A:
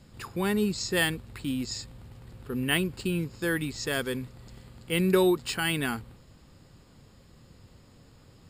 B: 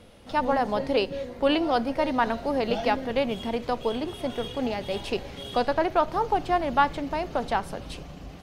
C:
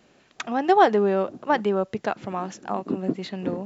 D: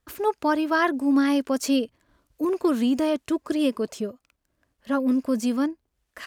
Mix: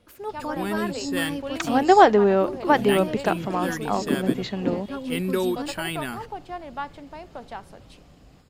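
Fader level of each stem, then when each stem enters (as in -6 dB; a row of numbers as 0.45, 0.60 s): -2.5, -11.0, +3.0, -9.5 dB; 0.20, 0.00, 1.20, 0.00 s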